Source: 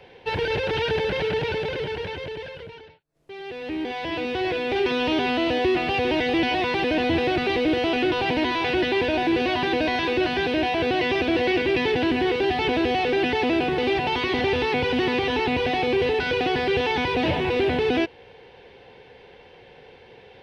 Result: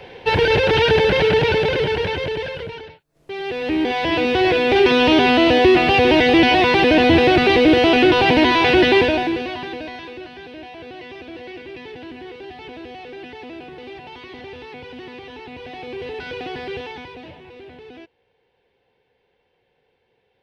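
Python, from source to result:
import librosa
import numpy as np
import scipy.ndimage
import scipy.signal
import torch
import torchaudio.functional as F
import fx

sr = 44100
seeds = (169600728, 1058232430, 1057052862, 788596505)

y = fx.gain(x, sr, db=fx.line((8.97, 9.0), (9.44, -3.5), (10.3, -14.0), (15.47, -14.0), (16.24, -7.0), (16.74, -7.0), (17.39, -19.0)))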